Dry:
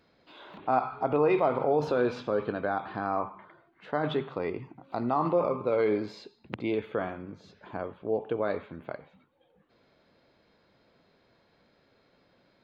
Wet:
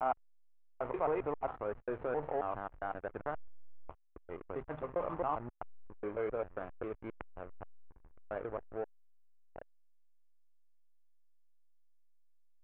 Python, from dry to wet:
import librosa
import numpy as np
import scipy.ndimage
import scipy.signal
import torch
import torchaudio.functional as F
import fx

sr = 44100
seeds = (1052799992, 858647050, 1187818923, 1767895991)

y = fx.block_reorder(x, sr, ms=134.0, group=6)
y = fx.env_lowpass(y, sr, base_hz=500.0, full_db=-25.0)
y = fx.backlash(y, sr, play_db=-28.0)
y = scipy.ndimage.gaussian_filter1d(y, 4.5, mode='constant')
y = fx.peak_eq(y, sr, hz=210.0, db=-13.0, octaves=2.5)
y = y * librosa.db_to_amplitude(-1.5)